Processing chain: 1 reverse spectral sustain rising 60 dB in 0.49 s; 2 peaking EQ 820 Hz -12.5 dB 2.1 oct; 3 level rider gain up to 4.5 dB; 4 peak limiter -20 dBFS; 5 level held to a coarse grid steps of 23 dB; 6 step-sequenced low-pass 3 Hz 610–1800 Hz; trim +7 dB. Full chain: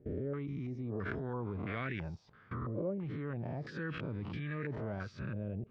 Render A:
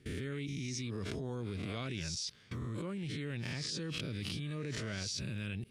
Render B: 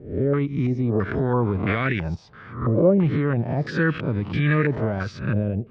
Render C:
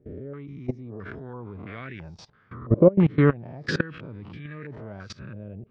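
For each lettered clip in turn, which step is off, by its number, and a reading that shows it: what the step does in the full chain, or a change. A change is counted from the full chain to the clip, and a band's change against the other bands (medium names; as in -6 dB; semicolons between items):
6, 4 kHz band +17.0 dB; 5, momentary loudness spread change +4 LU; 4, mean gain reduction 2.5 dB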